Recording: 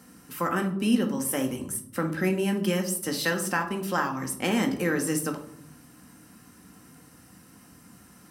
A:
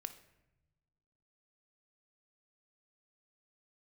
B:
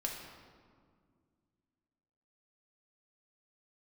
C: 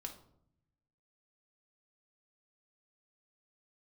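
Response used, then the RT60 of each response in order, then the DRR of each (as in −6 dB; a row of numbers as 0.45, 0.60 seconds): C; non-exponential decay, 2.0 s, 0.70 s; 9.5, −1.0, 3.0 decibels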